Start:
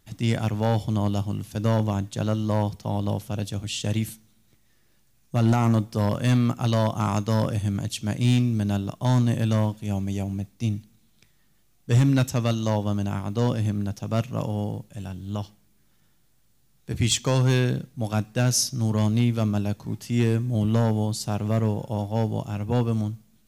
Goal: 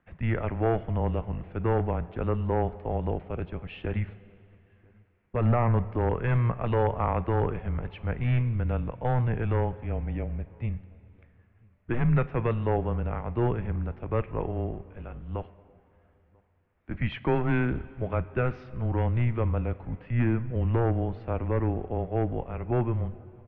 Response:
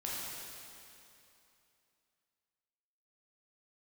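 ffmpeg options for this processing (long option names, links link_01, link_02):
-filter_complex "[0:a]asplit=2[link_01][link_02];[link_02]adelay=991.3,volume=-29dB,highshelf=frequency=4000:gain=-22.3[link_03];[link_01][link_03]amix=inputs=2:normalize=0,asplit=2[link_04][link_05];[1:a]atrim=start_sample=2205,asetrate=41454,aresample=44100[link_06];[link_05][link_06]afir=irnorm=-1:irlink=0,volume=-19dB[link_07];[link_04][link_07]amix=inputs=2:normalize=0,highpass=frequency=180:width_type=q:width=0.5412,highpass=frequency=180:width_type=q:width=1.307,lowpass=frequency=2400:width_type=q:width=0.5176,lowpass=frequency=2400:width_type=q:width=0.7071,lowpass=frequency=2400:width_type=q:width=1.932,afreqshift=-120"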